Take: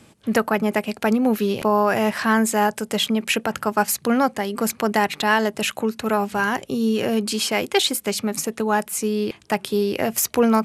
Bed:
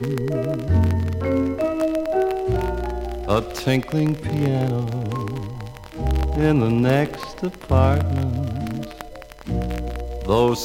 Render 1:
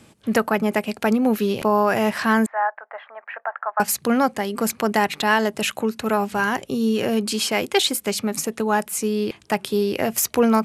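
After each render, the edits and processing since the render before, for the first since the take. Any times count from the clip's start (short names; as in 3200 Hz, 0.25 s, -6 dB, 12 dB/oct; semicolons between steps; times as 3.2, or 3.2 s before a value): 2.46–3.8 elliptic band-pass 660–1800 Hz, stop band 70 dB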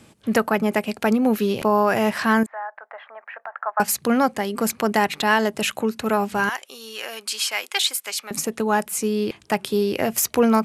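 2.43–3.56 compressor 2:1, threshold -35 dBFS; 6.49–8.31 HPF 1100 Hz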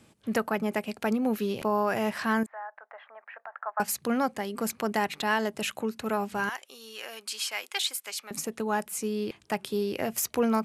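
gain -8 dB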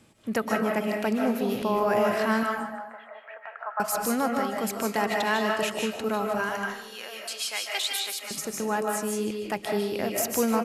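feedback echo 0.149 s, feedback 36%, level -13.5 dB; digital reverb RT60 0.51 s, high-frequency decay 0.65×, pre-delay 0.115 s, DRR 0.5 dB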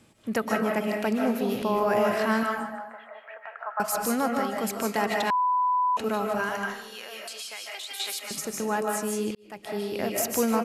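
5.3–5.97 bleep 997 Hz -20.5 dBFS; 6.9–8 compressor, threshold -34 dBFS; 9.35–10.04 fade in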